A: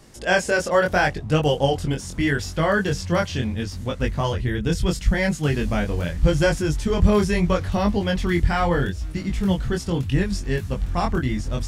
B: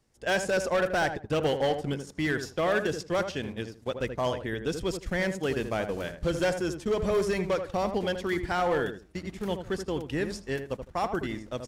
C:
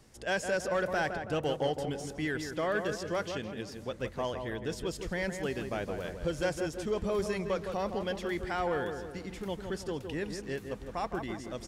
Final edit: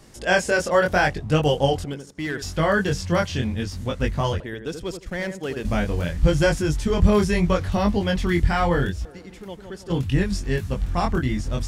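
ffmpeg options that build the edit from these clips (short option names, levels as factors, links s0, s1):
-filter_complex "[1:a]asplit=2[s0][s1];[0:a]asplit=4[s2][s3][s4][s5];[s2]atrim=end=1.842[s6];[s0]atrim=start=1.838:end=2.422[s7];[s3]atrim=start=2.418:end=4.402[s8];[s1]atrim=start=4.398:end=5.652[s9];[s4]atrim=start=5.648:end=9.052[s10];[2:a]atrim=start=9.048:end=9.902[s11];[s5]atrim=start=9.898[s12];[s6][s7]acrossfade=d=0.004:c1=hsin:c2=hsin[s13];[s13][s8]acrossfade=d=0.004:c1=hsin:c2=hsin[s14];[s14][s9]acrossfade=d=0.004:c1=hsin:c2=hsin[s15];[s15][s10]acrossfade=d=0.004:c1=hsin:c2=hsin[s16];[s16][s11]acrossfade=d=0.004:c1=hsin:c2=hsin[s17];[s17][s12]acrossfade=d=0.004:c1=hsin:c2=hsin"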